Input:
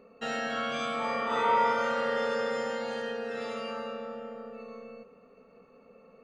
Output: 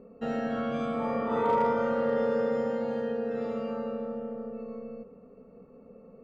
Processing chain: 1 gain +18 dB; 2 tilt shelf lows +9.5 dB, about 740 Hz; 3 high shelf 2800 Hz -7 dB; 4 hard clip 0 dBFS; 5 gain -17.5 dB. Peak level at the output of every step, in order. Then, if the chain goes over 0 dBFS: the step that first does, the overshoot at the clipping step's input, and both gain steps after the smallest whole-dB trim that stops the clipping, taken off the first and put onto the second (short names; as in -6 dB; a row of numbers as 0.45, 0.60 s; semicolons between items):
+3.5, +3.5, +3.0, 0.0, -17.5 dBFS; step 1, 3.0 dB; step 1 +15 dB, step 5 -14.5 dB